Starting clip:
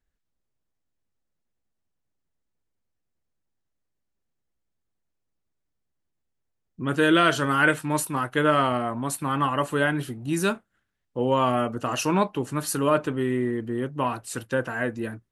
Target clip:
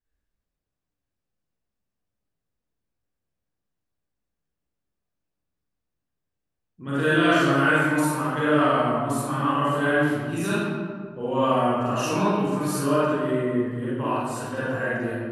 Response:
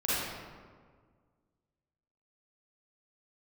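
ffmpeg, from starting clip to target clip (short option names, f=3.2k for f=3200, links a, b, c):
-filter_complex "[1:a]atrim=start_sample=2205[a];[0:a][a]afir=irnorm=-1:irlink=0,volume=-9dB"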